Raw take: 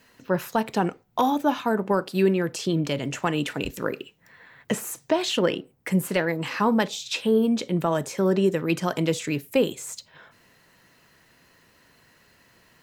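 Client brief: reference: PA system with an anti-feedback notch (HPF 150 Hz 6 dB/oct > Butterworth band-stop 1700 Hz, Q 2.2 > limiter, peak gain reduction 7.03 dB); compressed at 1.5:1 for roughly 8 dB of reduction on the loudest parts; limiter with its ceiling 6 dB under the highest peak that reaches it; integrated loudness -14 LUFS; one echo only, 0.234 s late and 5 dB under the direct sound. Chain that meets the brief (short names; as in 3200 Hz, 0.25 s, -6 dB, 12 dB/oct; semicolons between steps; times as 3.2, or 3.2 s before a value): compressor 1.5:1, threshold -39 dBFS; limiter -22 dBFS; HPF 150 Hz 6 dB/oct; Butterworth band-stop 1700 Hz, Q 2.2; echo 0.234 s -5 dB; gain +22 dB; limiter -3.5 dBFS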